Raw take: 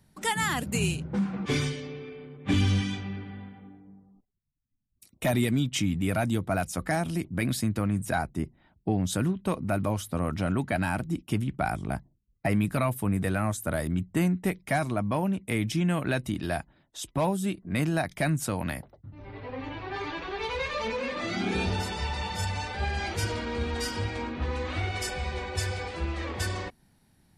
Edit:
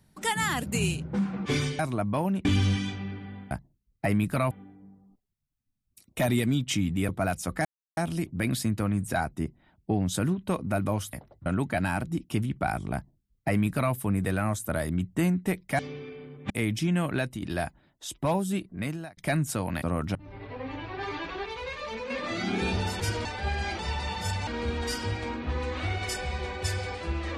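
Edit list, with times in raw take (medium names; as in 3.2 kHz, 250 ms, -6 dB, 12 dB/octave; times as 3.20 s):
1.79–2.50 s: swap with 14.77–15.43 s
6.14–6.39 s: delete
6.95 s: insert silence 0.32 s
10.11–10.44 s: swap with 18.75–19.08 s
11.92–12.92 s: copy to 3.56 s
16.08–16.35 s: fade out, to -7 dB
17.56–18.10 s: fade out
20.39–21.03 s: gain -5 dB
21.93–22.61 s: swap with 23.15–23.40 s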